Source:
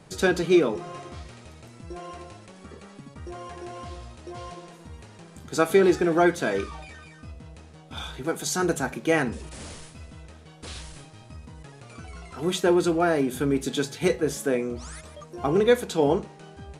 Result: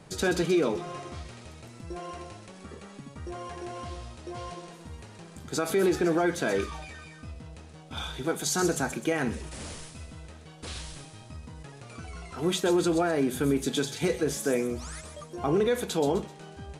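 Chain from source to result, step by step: peak limiter -16.5 dBFS, peak gain reduction 10 dB; on a send: feedback echo behind a high-pass 128 ms, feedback 41%, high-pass 3.5 kHz, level -6.5 dB

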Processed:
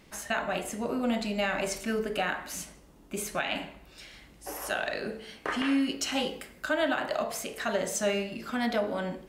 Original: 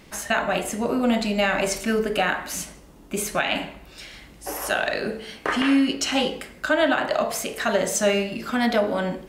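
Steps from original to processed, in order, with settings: 5.80–7.24 s: treble shelf 12 kHz +9.5 dB; trim -7.5 dB

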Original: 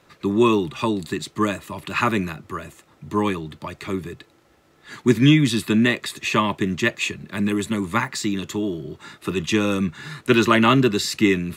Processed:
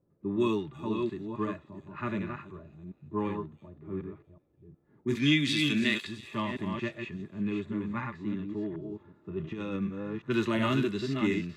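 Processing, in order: chunks repeated in reverse 365 ms, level -5 dB; 5.15–6.07 s: frequency weighting D; level-controlled noise filter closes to 370 Hz, open at -11.5 dBFS; harmonic-percussive split percussive -12 dB; 9.36–9.76 s: compressor with a negative ratio -24 dBFS, ratio -0.5; feedback echo behind a high-pass 332 ms, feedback 43%, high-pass 5.1 kHz, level -11 dB; trim -9 dB

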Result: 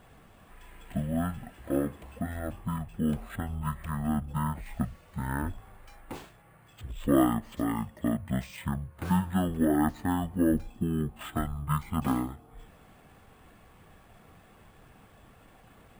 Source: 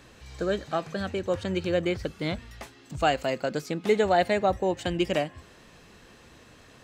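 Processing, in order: harmonic-percussive split harmonic -6 dB; speed mistake 78 rpm record played at 33 rpm; sample-and-hold 4×

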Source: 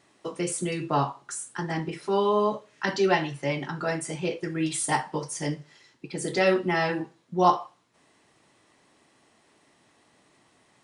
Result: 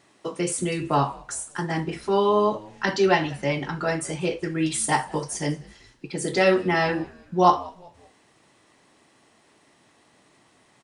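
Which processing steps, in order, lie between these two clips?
frequency-shifting echo 189 ms, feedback 41%, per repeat -95 Hz, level -23.5 dB; trim +3 dB

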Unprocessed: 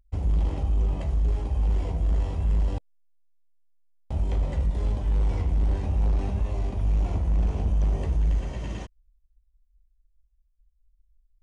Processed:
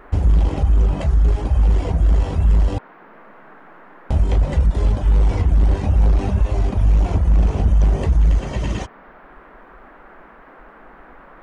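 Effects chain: reverb removal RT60 0.58 s; in parallel at 0 dB: compression, threshold -34 dBFS, peak gain reduction 12 dB; on the sum: band noise 170–1600 Hz -53 dBFS; trim +8 dB

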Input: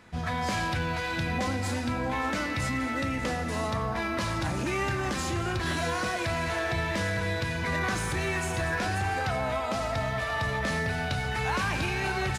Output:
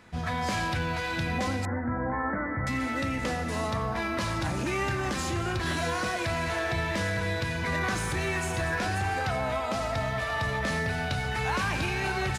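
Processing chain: 1.65–2.67 s: steep low-pass 2 kHz 96 dB/octave

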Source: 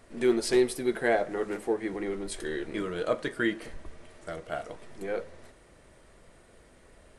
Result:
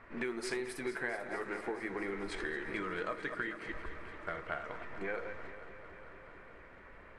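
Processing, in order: chunks repeated in reverse 124 ms, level -11 dB; level-controlled noise filter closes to 2.6 kHz, open at -21.5 dBFS; high-order bell 1.5 kHz +9.5 dB; compression 10:1, threshold -32 dBFS, peak gain reduction 16.5 dB; on a send: multi-head delay 221 ms, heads first and second, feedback 73%, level -17.5 dB; on the sum: trim -2.5 dB

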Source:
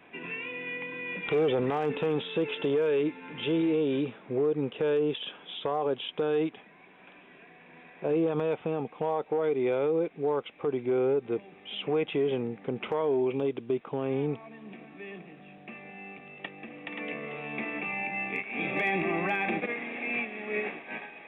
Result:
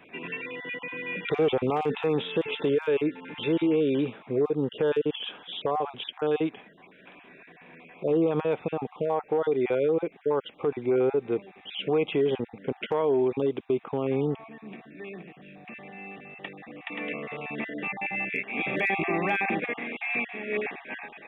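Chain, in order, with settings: random holes in the spectrogram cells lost 23%; 15.31–16.69 s: transient shaper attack -3 dB, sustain +1 dB; trim +3 dB

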